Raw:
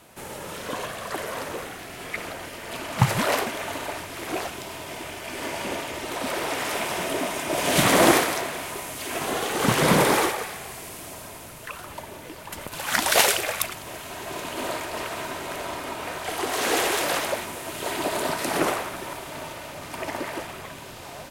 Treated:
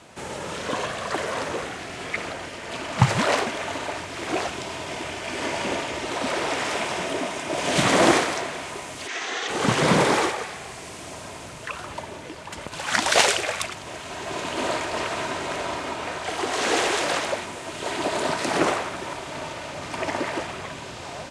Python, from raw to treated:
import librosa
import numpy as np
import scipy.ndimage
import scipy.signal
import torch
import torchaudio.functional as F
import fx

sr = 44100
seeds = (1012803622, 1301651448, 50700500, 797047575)

y = fx.cabinet(x, sr, low_hz=490.0, low_slope=12, high_hz=7100.0, hz=(600.0, 980.0, 1900.0, 3600.0, 6000.0), db=(-10, -5, 7, 4, 5), at=(9.07, 9.47), fade=0.02)
y = scipy.signal.sosfilt(scipy.signal.butter(4, 8300.0, 'lowpass', fs=sr, output='sos'), y)
y = fx.rider(y, sr, range_db=4, speed_s=2.0)
y = scipy.signal.sosfilt(scipy.signal.butter(2, 44.0, 'highpass', fs=sr, output='sos'), y)